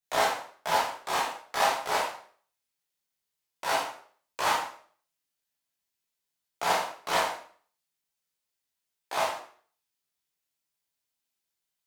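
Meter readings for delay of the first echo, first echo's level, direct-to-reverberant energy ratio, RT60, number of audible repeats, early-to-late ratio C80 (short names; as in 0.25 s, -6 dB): none, none, -7.0 dB, 0.50 s, none, 8.0 dB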